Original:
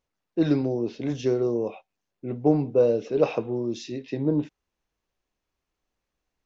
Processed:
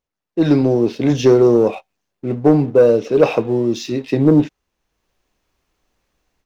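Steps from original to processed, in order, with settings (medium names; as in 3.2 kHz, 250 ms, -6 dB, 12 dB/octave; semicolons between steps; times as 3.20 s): level rider gain up to 16 dB; waveshaping leveller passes 1; trim -1 dB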